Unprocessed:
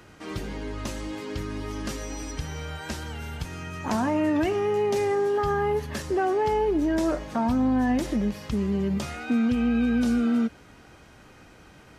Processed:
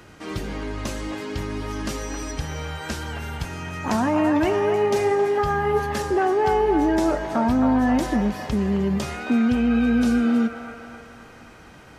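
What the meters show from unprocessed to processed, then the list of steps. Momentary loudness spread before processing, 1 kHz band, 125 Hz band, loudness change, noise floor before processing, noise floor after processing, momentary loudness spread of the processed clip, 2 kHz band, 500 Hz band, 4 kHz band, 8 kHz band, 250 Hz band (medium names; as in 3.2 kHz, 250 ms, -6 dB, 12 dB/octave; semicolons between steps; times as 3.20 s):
12 LU, +5.5 dB, +3.5 dB, +4.0 dB, -51 dBFS, -46 dBFS, 12 LU, +5.0 dB, +3.5 dB, +3.5 dB, +3.5 dB, +3.5 dB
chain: feedback echo behind a band-pass 267 ms, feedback 54%, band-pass 1.1 kHz, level -4 dB; trim +3.5 dB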